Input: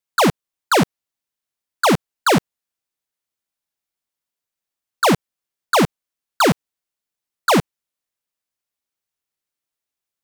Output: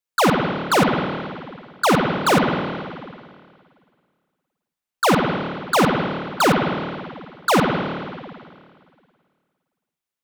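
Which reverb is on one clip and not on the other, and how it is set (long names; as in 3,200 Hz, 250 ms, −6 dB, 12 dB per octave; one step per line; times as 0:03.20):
spring reverb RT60 2 s, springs 52/56 ms, chirp 80 ms, DRR 0 dB
level −2.5 dB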